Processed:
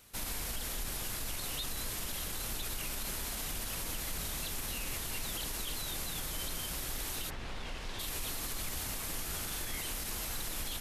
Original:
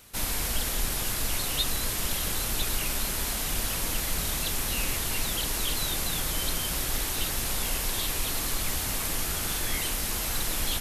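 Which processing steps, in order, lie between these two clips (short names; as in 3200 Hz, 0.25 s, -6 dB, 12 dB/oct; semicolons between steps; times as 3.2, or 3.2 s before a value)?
limiter -21.5 dBFS, peak gain reduction 7.5 dB; 7.29–7.98 LPF 2600 Hz -> 4600 Hz 12 dB/oct; gain -6.5 dB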